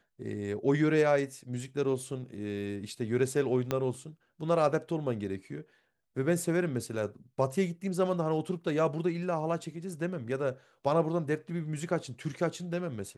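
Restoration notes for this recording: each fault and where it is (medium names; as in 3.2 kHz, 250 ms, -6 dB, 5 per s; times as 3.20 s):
3.71 s: pop -15 dBFS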